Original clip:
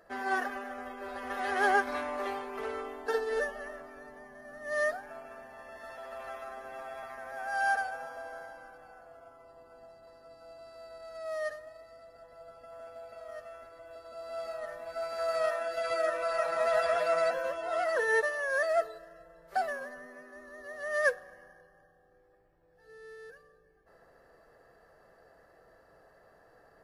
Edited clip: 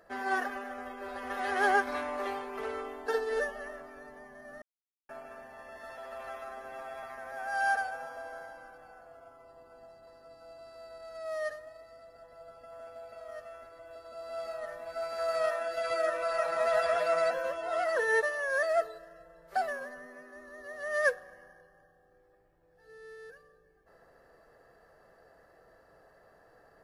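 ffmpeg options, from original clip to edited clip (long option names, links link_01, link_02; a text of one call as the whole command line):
ffmpeg -i in.wav -filter_complex "[0:a]asplit=3[link_01][link_02][link_03];[link_01]atrim=end=4.62,asetpts=PTS-STARTPTS,afade=type=out:start_time=4.616:duration=0.004:curve=hsin[link_04];[link_02]atrim=start=4.62:end=5.09,asetpts=PTS-STARTPTS,volume=0[link_05];[link_03]atrim=start=5.09,asetpts=PTS-STARTPTS,afade=type=in:duration=0.004:curve=hsin[link_06];[link_04][link_05][link_06]concat=n=3:v=0:a=1" out.wav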